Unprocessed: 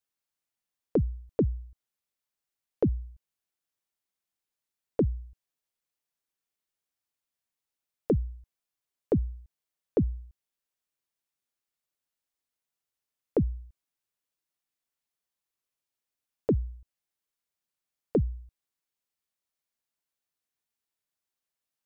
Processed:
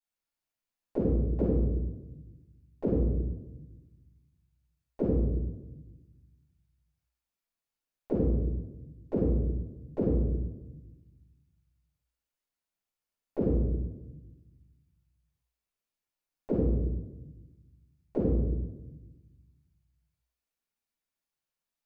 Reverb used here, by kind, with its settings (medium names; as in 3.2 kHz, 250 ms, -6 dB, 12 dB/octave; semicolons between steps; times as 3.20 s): simulated room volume 530 m³, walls mixed, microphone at 8.9 m; trim -17 dB